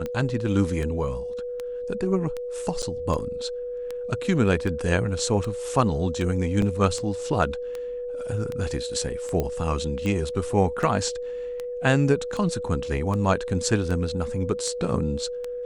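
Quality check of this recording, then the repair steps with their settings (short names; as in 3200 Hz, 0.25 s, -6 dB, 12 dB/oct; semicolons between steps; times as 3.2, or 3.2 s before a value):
tick 78 rpm -18 dBFS
tone 490 Hz -29 dBFS
2.82–2.83 gap 7.2 ms
6.62 gap 2.6 ms
9.4 pop -13 dBFS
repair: de-click; notch 490 Hz, Q 30; interpolate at 2.82, 7.2 ms; interpolate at 6.62, 2.6 ms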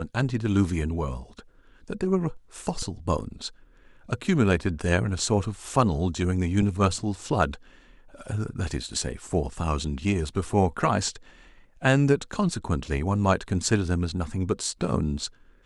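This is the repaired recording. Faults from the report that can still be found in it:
none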